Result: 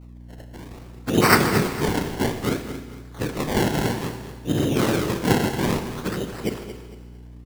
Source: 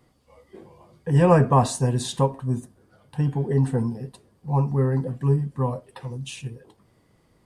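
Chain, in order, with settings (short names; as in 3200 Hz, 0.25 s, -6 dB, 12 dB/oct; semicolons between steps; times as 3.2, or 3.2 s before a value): median-filter separation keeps harmonic; 2.48–3.45 HPF 250 Hz 24 dB/oct; in parallel at -2 dB: negative-ratio compressor -27 dBFS, ratio -0.5; on the sum: noise vocoder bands 3; LFO low-pass saw up 1.7 Hz 960–5600 Hz; decimation with a swept rate 25×, swing 100% 0.6 Hz; hum 60 Hz, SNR 18 dB; on a send: feedback echo 0.227 s, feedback 32%, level -12 dB; on the sum: Schroeder reverb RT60 1.4 s, combs from 26 ms, DRR 8.5 dB; gain -2.5 dB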